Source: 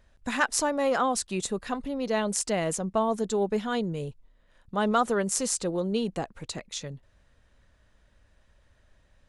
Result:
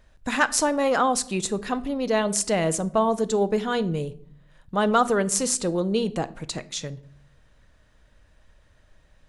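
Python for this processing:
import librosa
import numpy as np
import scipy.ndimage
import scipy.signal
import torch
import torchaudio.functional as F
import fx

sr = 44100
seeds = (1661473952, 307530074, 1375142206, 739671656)

y = fx.room_shoebox(x, sr, seeds[0], volume_m3=990.0, walls='furnished', distance_m=0.53)
y = F.gain(torch.from_numpy(y), 4.0).numpy()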